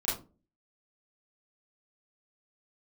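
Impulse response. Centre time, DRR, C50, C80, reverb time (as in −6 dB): 43 ms, −9.5 dB, 5.0 dB, 12.5 dB, 0.30 s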